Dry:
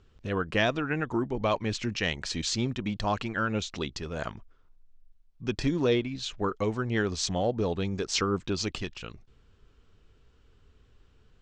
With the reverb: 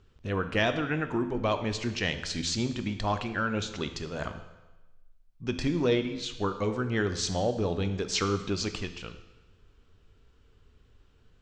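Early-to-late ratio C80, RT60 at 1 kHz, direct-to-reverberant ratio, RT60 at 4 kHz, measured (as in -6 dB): 12.5 dB, 1.1 s, 8.0 dB, 1.0 s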